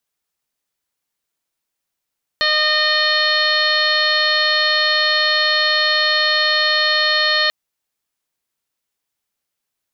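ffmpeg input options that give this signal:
-f lavfi -i "aevalsrc='0.0631*sin(2*PI*612*t)+0.0631*sin(2*PI*1224*t)+0.126*sin(2*PI*1836*t)+0.0316*sin(2*PI*2448*t)+0.0668*sin(2*PI*3060*t)+0.0708*sin(2*PI*3672*t)+0.119*sin(2*PI*4284*t)+0.0168*sin(2*PI*4896*t)+0.0126*sin(2*PI*5508*t)':d=5.09:s=44100"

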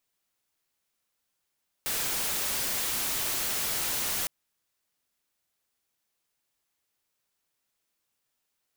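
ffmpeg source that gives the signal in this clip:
-f lavfi -i "anoisesrc=c=white:a=0.0548:d=2.41:r=44100:seed=1"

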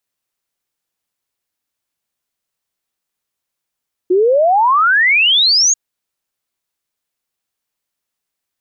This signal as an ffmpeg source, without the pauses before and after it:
-f lavfi -i "aevalsrc='0.376*clip(min(t,1.64-t)/0.01,0,1)*sin(2*PI*350*1.64/log(6800/350)*(exp(log(6800/350)*t/1.64)-1))':d=1.64:s=44100"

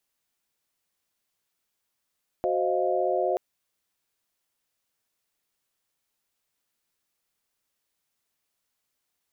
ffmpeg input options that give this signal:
-f lavfi -i "aevalsrc='0.0398*(sin(2*PI*369.99*t)+sin(2*PI*523.25*t)+sin(2*PI*622.25*t)+sin(2*PI*698.46*t))':d=0.93:s=44100"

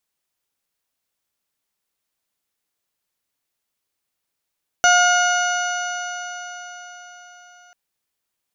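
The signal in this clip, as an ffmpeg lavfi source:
-f lavfi -i "aevalsrc='0.188*pow(10,-3*t/4.66)*sin(2*PI*712.71*t)+0.211*pow(10,-3*t/4.66)*sin(2*PI*1429.68*t)+0.0447*pow(10,-3*t/4.66)*sin(2*PI*2155.14*t)+0.0841*pow(10,-3*t/4.66)*sin(2*PI*2893.21*t)+0.0211*pow(10,-3*t/4.66)*sin(2*PI*3647.91*t)+0.0316*pow(10,-3*t/4.66)*sin(2*PI*4423.12*t)+0.02*pow(10,-3*t/4.66)*sin(2*PI*5222.51*t)+0.119*pow(10,-3*t/4.66)*sin(2*PI*6049.57*t)+0.0266*pow(10,-3*t/4.66)*sin(2*PI*6907.57*t)':d=2.89:s=44100"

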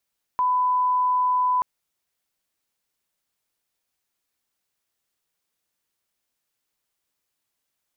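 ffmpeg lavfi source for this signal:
-f lavfi -i "sine=f=1000:d=1.23:r=44100,volume=0.06dB"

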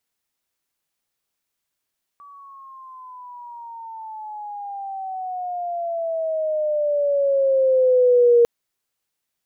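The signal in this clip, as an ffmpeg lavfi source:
-f lavfi -i "aevalsrc='pow(10,(-10+31*(t/6.25-1))/20)*sin(2*PI*1150*6.25/(-15.5*log(2)/12)*(exp(-15.5*log(2)/12*t/6.25)-1))':d=6.25:s=44100"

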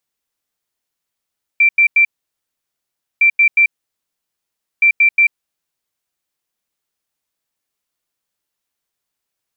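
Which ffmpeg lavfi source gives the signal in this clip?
-f lavfi -i "aevalsrc='0.447*sin(2*PI*2350*t)*clip(min(mod(mod(t,1.61),0.18),0.09-mod(mod(t,1.61),0.18))/0.005,0,1)*lt(mod(t,1.61),0.54)':d=4.83:s=44100"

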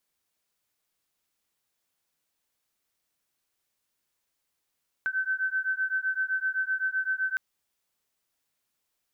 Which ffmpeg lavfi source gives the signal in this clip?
-f lavfi -i "aevalsrc='0.0355*(sin(2*PI*1530*t)+sin(2*PI*1537.8*t))':d=2.31:s=44100"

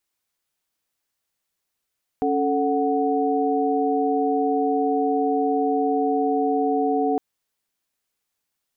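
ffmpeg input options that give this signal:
-f lavfi -i "aevalsrc='0.0708*(sin(2*PI*277.18*t)+sin(2*PI*440*t)+sin(2*PI*739.99*t))':d=4.96:s=44100"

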